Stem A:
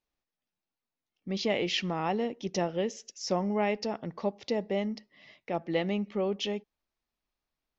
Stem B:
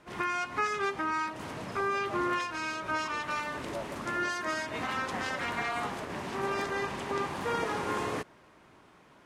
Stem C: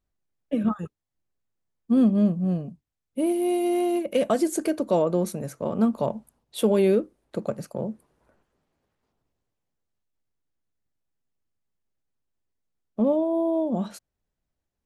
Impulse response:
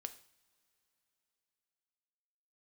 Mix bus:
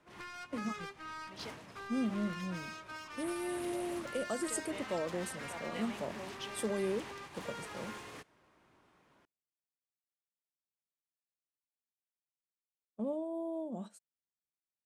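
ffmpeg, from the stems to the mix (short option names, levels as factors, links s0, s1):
-filter_complex "[0:a]equalizer=f=170:w=0.31:g=-13,volume=0.316,asplit=3[s0][s1][s2];[s0]atrim=end=1.5,asetpts=PTS-STARTPTS,afade=t=out:st=1.496:d=0.004:c=hsin[s3];[s1]atrim=start=1.5:end=4.48,asetpts=PTS-STARTPTS,volume=0[s4];[s2]atrim=start=4.48,asetpts=PTS-STARTPTS,afade=t=in:d=0.004:c=hsin[s5];[s3][s4][s5]concat=n=3:v=0:a=1[s6];[1:a]acrossover=split=130|1700[s7][s8][s9];[s7]acompressor=threshold=0.002:ratio=4[s10];[s8]acompressor=threshold=0.00794:ratio=4[s11];[s9]acompressor=threshold=0.00891:ratio=4[s12];[s10][s11][s12]amix=inputs=3:normalize=0,asoftclip=type=tanh:threshold=0.0106,volume=0.596,asplit=2[s13][s14];[s14]volume=0.596[s15];[2:a]highpass=140,equalizer=f=8300:w=2.6:g=15,volume=0.188[s16];[3:a]atrim=start_sample=2205[s17];[s15][s17]afir=irnorm=-1:irlink=0[s18];[s6][s13][s16][s18]amix=inputs=4:normalize=0,agate=range=0.398:threshold=0.00501:ratio=16:detection=peak"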